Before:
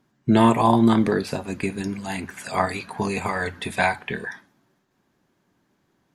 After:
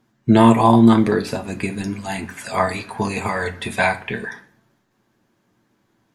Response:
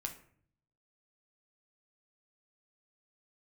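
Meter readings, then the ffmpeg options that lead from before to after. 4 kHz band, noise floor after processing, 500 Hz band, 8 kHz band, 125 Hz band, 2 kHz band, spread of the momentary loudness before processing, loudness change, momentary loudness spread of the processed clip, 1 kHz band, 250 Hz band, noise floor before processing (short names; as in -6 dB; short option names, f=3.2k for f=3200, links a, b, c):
+2.5 dB, -67 dBFS, +4.0 dB, +3.0 dB, +5.0 dB, +3.0 dB, 14 LU, +4.0 dB, 16 LU, +3.5 dB, +5.0 dB, -70 dBFS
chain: -filter_complex "[0:a]asplit=2[a][b];[1:a]atrim=start_sample=2205,adelay=9[c];[b][c]afir=irnorm=-1:irlink=0,volume=-5dB[d];[a][d]amix=inputs=2:normalize=0,volume=2dB"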